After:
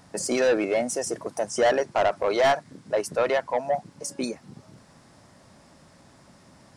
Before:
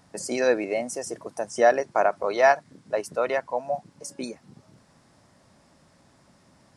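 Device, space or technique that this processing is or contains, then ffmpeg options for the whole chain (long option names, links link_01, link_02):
saturation between pre-emphasis and de-emphasis: -af "highshelf=frequency=6600:gain=7,asoftclip=type=tanh:threshold=-21dB,highshelf=frequency=6600:gain=-7,volume=5dB"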